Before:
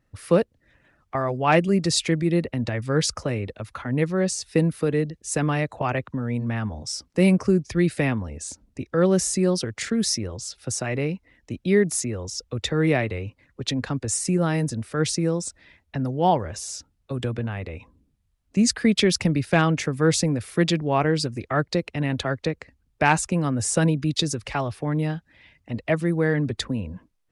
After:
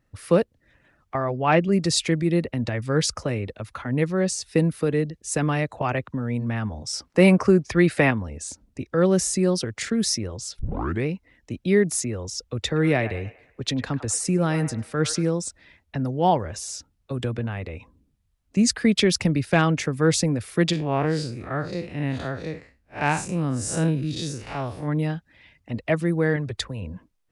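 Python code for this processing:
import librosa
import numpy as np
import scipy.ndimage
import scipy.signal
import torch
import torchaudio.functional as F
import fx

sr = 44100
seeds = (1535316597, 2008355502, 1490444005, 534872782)

y = fx.air_absorb(x, sr, metres=140.0, at=(1.16, 1.71), fade=0.02)
y = fx.peak_eq(y, sr, hz=1100.0, db=9.0, octaves=2.7, at=(6.93, 8.11))
y = fx.echo_wet_bandpass(y, sr, ms=100, feedback_pct=41, hz=1200.0, wet_db=-10, at=(12.66, 15.3))
y = fx.spec_blur(y, sr, span_ms=118.0, at=(20.72, 24.87), fade=0.02)
y = fx.peak_eq(y, sr, hz=250.0, db=-13.0, octaves=0.83, at=(26.36, 26.82))
y = fx.edit(y, sr, fx.tape_start(start_s=10.59, length_s=0.47), tone=tone)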